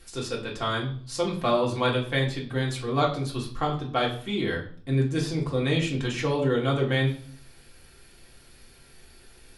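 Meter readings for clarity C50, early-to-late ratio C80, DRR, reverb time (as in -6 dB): 9.5 dB, 13.5 dB, -3.0 dB, 0.50 s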